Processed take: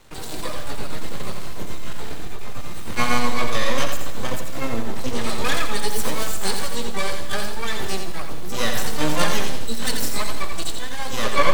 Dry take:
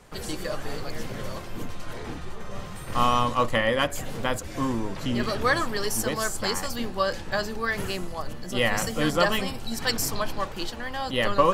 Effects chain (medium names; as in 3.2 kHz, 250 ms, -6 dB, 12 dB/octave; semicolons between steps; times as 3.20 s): peaking EQ 3.9 kHz +8.5 dB 0.28 oct; half-wave rectifier; harmony voices +12 st -2 dB; Schroeder reverb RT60 1.4 s, combs from 27 ms, DRR 11 dB; bit-crushed delay 86 ms, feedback 35%, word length 7-bit, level -6 dB; trim +1.5 dB